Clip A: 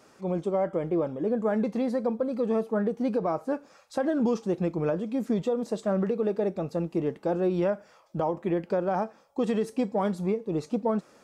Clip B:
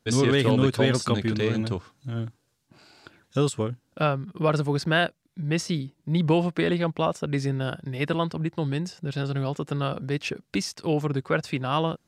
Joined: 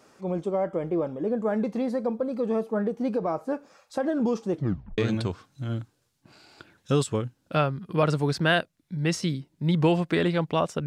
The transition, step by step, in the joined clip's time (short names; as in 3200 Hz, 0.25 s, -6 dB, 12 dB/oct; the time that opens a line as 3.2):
clip A
4.52 tape stop 0.46 s
4.98 switch to clip B from 1.44 s